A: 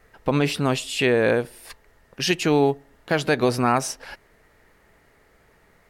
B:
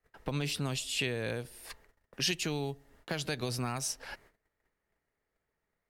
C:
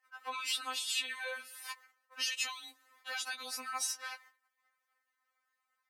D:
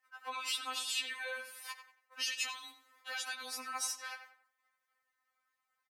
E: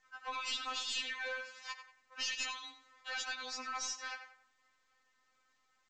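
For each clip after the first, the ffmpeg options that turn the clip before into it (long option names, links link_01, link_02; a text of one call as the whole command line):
ffmpeg -i in.wav -filter_complex "[0:a]agate=range=-22dB:threshold=-53dB:ratio=16:detection=peak,acrossover=split=130|3000[link_01][link_02][link_03];[link_02]acompressor=threshold=-32dB:ratio=4[link_04];[link_01][link_04][link_03]amix=inputs=3:normalize=0,volume=-4.5dB" out.wav
ffmpeg -i in.wav -af "alimiter=level_in=2.5dB:limit=-24dB:level=0:latency=1:release=63,volume=-2.5dB,highpass=frequency=1100:width_type=q:width=1.8,afftfilt=real='re*3.46*eq(mod(b,12),0)':imag='im*3.46*eq(mod(b,12),0)':win_size=2048:overlap=0.75,volume=4.5dB" out.wav
ffmpeg -i in.wav -filter_complex "[0:a]asplit=2[link_01][link_02];[link_02]adelay=91,lowpass=frequency=2700:poles=1,volume=-8.5dB,asplit=2[link_03][link_04];[link_04]adelay=91,lowpass=frequency=2700:poles=1,volume=0.36,asplit=2[link_05][link_06];[link_06]adelay=91,lowpass=frequency=2700:poles=1,volume=0.36,asplit=2[link_07][link_08];[link_08]adelay=91,lowpass=frequency=2700:poles=1,volume=0.36[link_09];[link_01][link_03][link_05][link_07][link_09]amix=inputs=5:normalize=0,volume=-1.5dB" out.wav
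ffmpeg -i in.wav -af "highpass=frequency=160:width=0.5412,highpass=frequency=160:width=1.3066,aeval=exprs='0.0708*(cos(1*acos(clip(val(0)/0.0708,-1,1)))-cos(1*PI/2))+0.0178*(cos(5*acos(clip(val(0)/0.0708,-1,1)))-cos(5*PI/2))+0.00501*(cos(6*acos(clip(val(0)/0.0708,-1,1)))-cos(6*PI/2))':channel_layout=same,volume=-5.5dB" -ar 16000 -c:a pcm_mulaw out.wav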